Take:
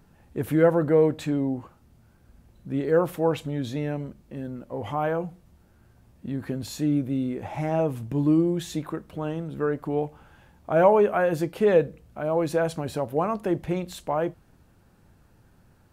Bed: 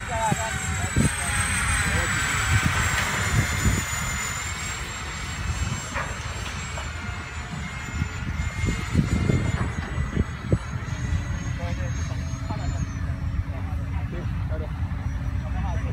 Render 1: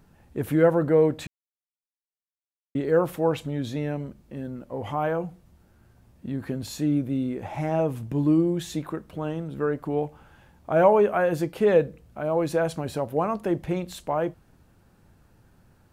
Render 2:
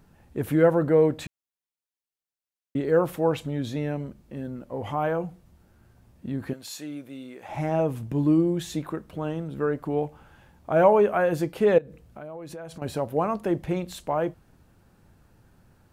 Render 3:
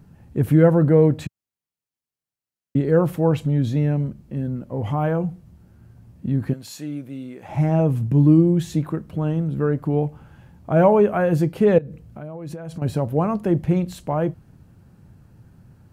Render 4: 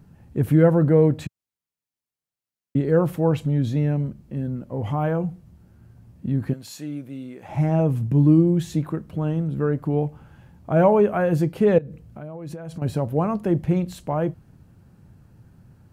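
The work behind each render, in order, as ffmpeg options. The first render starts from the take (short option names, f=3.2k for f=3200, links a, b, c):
-filter_complex "[0:a]asplit=3[a][b][c];[a]atrim=end=1.27,asetpts=PTS-STARTPTS,afade=t=out:st=1.266:d=0.004:c=hsin[d];[b]atrim=start=1.27:end=2.75,asetpts=PTS-STARTPTS,volume=0[e];[c]atrim=start=2.75,asetpts=PTS-STARTPTS,afade=t=in:d=0.004:c=hsin[f];[d][e][f]concat=n=3:v=0:a=1"
-filter_complex "[0:a]asettb=1/sr,asplit=3[a][b][c];[a]atrim=end=6.534[d];[b]atrim=start=6.53:end=7.49,asetpts=PTS-STARTPTS,afade=t=in:d=0.004:c=qsin,afade=t=out:st=0.956:d=0.004:c=qsin,highpass=f=1.2k:p=1[e];[c]atrim=start=7.486[f];[d][e]acrossfade=d=0.004:c1=hsin:c2=qsin[g];[g][f]acrossfade=d=0.004:c1=qsin:c2=hsin,asettb=1/sr,asplit=3[h][i][j];[h]atrim=end=11.784[k];[i]atrim=start=11.78:end=12.82,asetpts=PTS-STARTPTS,afade=t=in:d=0.004:c=qsin,afade=t=out:st=1.036:d=0.004:c=qsin,acompressor=threshold=-37dB:ratio=5:attack=3.2:release=140:knee=1:detection=peak[l];[j]atrim=start=12.816[m];[k][l]acrossfade=d=0.004:c1=hsin:c2=qsin[n];[n][m]acrossfade=d=0.004:c1=qsin:c2=hsin"
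-af "equalizer=f=130:t=o:w=2.1:g=12.5,bandreject=f=3.6k:w=22"
-af "volume=-1.5dB"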